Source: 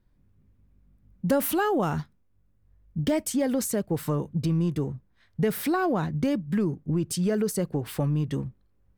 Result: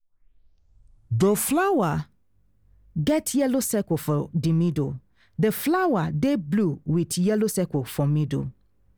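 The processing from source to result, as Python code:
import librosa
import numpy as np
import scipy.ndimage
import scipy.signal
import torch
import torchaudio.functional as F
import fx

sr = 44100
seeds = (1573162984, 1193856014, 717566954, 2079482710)

y = fx.tape_start_head(x, sr, length_s=1.78)
y = F.gain(torch.from_numpy(y), 3.0).numpy()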